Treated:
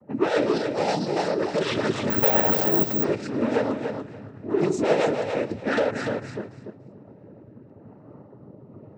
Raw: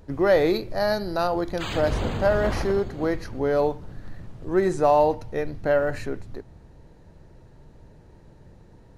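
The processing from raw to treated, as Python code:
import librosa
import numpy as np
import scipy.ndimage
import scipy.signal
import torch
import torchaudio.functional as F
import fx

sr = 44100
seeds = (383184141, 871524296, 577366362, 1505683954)

p1 = fx.env_lowpass(x, sr, base_hz=800.0, full_db=-21.0)
p2 = p1 + 0.56 * np.pad(p1, (int(3.6 * sr / 1000.0), 0))[:len(p1)]
p3 = fx.rider(p2, sr, range_db=10, speed_s=2.0)
p4 = p2 + F.gain(torch.from_numpy(p3), 2.0).numpy()
p5 = fx.filter_lfo_notch(p4, sr, shape='saw_down', hz=0.52, low_hz=570.0, high_hz=3800.0, q=1.9)
p6 = 10.0 ** (-17.5 / 20.0) * np.tanh(p5 / 10.0 ** (-17.5 / 20.0))
p7 = fx.rotary_switch(p6, sr, hz=7.5, then_hz=1.1, switch_at_s=5.11)
p8 = fx.noise_vocoder(p7, sr, seeds[0], bands=12)
p9 = fx.echo_feedback(p8, sr, ms=289, feedback_pct=18, wet_db=-6.5)
y = fx.resample_bad(p9, sr, factor=2, down='filtered', up='zero_stuff', at=(2.1, 3.04))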